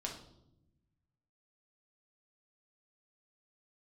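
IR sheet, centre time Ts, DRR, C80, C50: 25 ms, −0.5 dB, 11.0 dB, 6.5 dB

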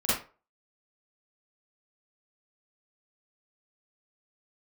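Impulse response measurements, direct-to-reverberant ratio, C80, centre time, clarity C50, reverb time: −11.5 dB, 7.0 dB, 60 ms, −1.5 dB, 0.35 s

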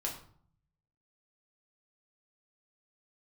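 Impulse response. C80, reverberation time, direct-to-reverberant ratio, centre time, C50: 11.0 dB, 0.55 s, −2.5 dB, 25 ms, 7.5 dB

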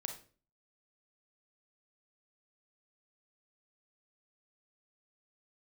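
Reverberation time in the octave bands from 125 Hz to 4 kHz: 0.50, 0.50, 0.45, 0.35, 0.35, 0.35 seconds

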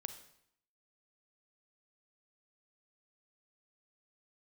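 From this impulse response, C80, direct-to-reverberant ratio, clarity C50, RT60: 13.0 dB, 9.0 dB, 10.5 dB, 0.70 s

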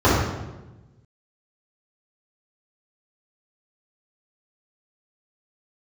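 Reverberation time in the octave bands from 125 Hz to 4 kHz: 1.6, 1.4, 1.2, 1.0, 0.90, 0.80 seconds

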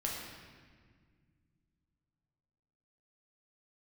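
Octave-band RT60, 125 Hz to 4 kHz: 3.6, 3.1, 1.9, 1.6, 1.7, 1.3 seconds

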